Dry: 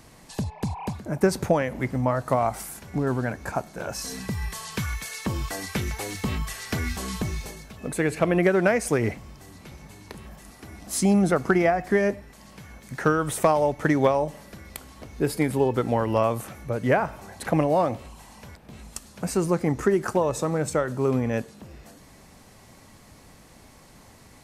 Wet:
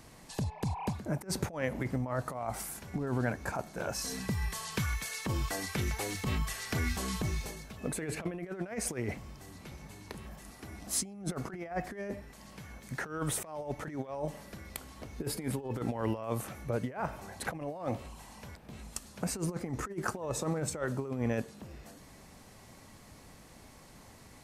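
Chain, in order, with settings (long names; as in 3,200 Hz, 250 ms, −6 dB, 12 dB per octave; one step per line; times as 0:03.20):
compressor whose output falls as the input rises −26 dBFS, ratio −0.5
level −7 dB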